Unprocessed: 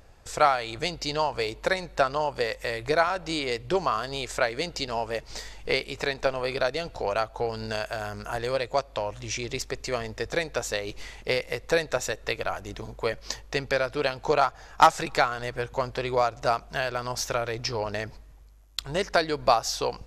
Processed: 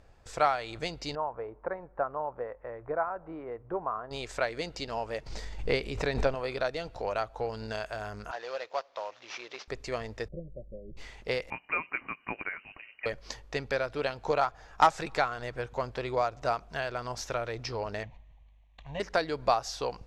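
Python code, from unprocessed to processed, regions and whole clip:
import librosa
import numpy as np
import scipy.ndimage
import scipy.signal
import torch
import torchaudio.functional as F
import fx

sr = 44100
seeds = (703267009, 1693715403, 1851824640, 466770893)

y = fx.chain(x, sr, fx.lowpass(hz=1300.0, slope=24),
    fx.low_shelf(hz=420.0, db=-8.0), at=(1.15, 4.11))
y = fx.chain(y, sr, fx.low_shelf(hz=350.0, db=8.5),
    fx.pre_swell(db_per_s=88.0), at=(5.26, 6.35))
y = fx.chain(y, sr, fx.cvsd(bps=32000),
    fx.highpass(hz=590.0, slope=12), at=(8.31, 9.68))
y = fx.chain(y, sr, fx.steep_lowpass(hz=620.0, slope=96),
    fx.peak_eq(hz=440.0, db=-13.5, octaves=1.4),
    fx.comb(ms=5.4, depth=0.81), at=(10.28, 10.97))
y = fx.chain(y, sr, fx.highpass(hz=480.0, slope=6),
    fx.freq_invert(carrier_hz=2900), at=(11.5, 13.06))
y = fx.chain(y, sr, fx.cvsd(bps=32000),
    fx.fixed_phaser(hz=1400.0, stages=6), at=(18.03, 19.0))
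y = scipy.signal.sosfilt(scipy.signal.butter(2, 11000.0, 'lowpass', fs=sr, output='sos'), y)
y = fx.high_shelf(y, sr, hz=4300.0, db=-6.5)
y = F.gain(torch.from_numpy(y), -4.5).numpy()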